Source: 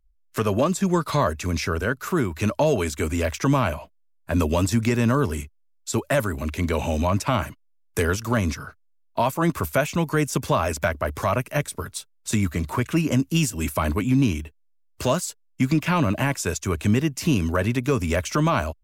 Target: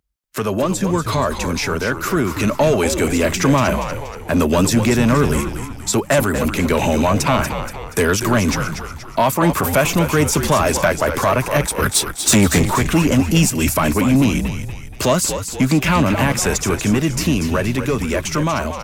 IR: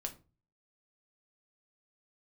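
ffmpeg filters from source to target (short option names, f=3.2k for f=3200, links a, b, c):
-filter_complex "[0:a]asplit=2[a][b];[b]alimiter=limit=-22dB:level=0:latency=1:release=30,volume=2dB[c];[a][c]amix=inputs=2:normalize=0,asettb=1/sr,asplit=3[d][e][f];[d]atrim=end=11.824[g];[e]atrim=start=11.82:end=12.66,asetpts=PTS-STARTPTS,afade=t=in:d=0.004:c=qsin,afade=t=out:st=0.836:d=0.004:c=qsin,aeval=exprs='0.398*sin(PI/2*1.58*val(0)/0.398)':c=same[h];[f]atrim=start=12.656[i];[g][h]acrossfade=d=0.004:c1=hsin:c2=qsin[j];[j][i]acrossfade=d=0.004:c1=qsin:c2=hsin,dynaudnorm=f=420:g=11:m=7dB,asoftclip=type=tanh:threshold=-6.5dB,highpass=120,asplit=2[k][l];[l]asplit=5[m][n][o][p][q];[m]adelay=238,afreqshift=-80,volume=-8.5dB[r];[n]adelay=476,afreqshift=-160,volume=-14.9dB[s];[o]adelay=714,afreqshift=-240,volume=-21.3dB[t];[p]adelay=952,afreqshift=-320,volume=-27.6dB[u];[q]adelay=1190,afreqshift=-400,volume=-34dB[v];[r][s][t][u][v]amix=inputs=5:normalize=0[w];[k][w]amix=inputs=2:normalize=0"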